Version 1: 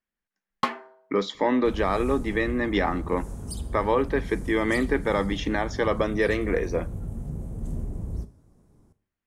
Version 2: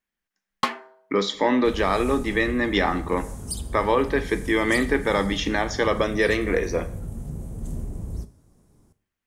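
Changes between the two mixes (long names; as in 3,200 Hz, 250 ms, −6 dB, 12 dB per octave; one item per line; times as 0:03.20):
speech: send +11.5 dB
master: add high-shelf EQ 2,500 Hz +8 dB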